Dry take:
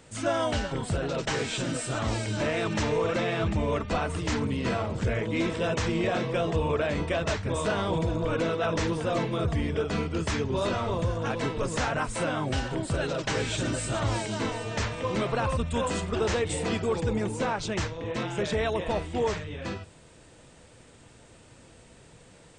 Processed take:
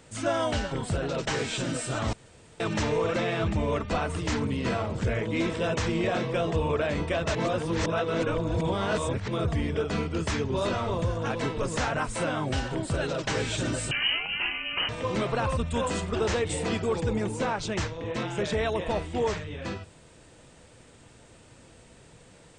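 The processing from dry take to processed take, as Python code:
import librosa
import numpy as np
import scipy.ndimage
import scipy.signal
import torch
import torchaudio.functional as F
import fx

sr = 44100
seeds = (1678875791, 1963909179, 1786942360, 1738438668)

y = fx.freq_invert(x, sr, carrier_hz=3000, at=(13.91, 14.89))
y = fx.edit(y, sr, fx.room_tone_fill(start_s=2.13, length_s=0.47),
    fx.reverse_span(start_s=7.35, length_s=1.93), tone=tone)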